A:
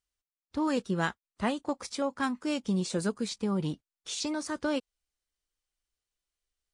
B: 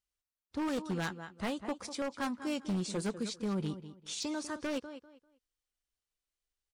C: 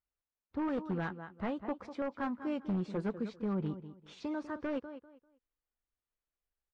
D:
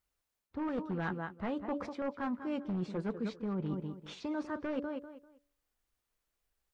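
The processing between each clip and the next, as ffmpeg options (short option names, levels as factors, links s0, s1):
-filter_complex "[0:a]asplit=2[s0][s1];[s1]adelay=197,lowpass=f=4600:p=1,volume=0.237,asplit=2[s2][s3];[s3]adelay=197,lowpass=f=4600:p=1,volume=0.24,asplit=2[s4][s5];[s5]adelay=197,lowpass=f=4600:p=1,volume=0.24[s6];[s0][s2][s4][s6]amix=inputs=4:normalize=0,aeval=exprs='0.0668*(abs(mod(val(0)/0.0668+3,4)-2)-1)':c=same,volume=0.631"
-af "lowpass=1700"
-af "bandreject=f=143.6:t=h:w=4,bandreject=f=287.2:t=h:w=4,bandreject=f=430.8:t=h:w=4,bandreject=f=574.4:t=h:w=4,areverse,acompressor=threshold=0.00794:ratio=6,areverse,volume=2.66"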